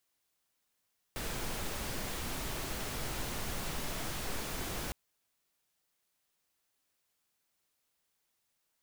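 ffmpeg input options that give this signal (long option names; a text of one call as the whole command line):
ffmpeg -f lavfi -i "anoisesrc=color=pink:amplitude=0.0684:duration=3.76:sample_rate=44100:seed=1" out.wav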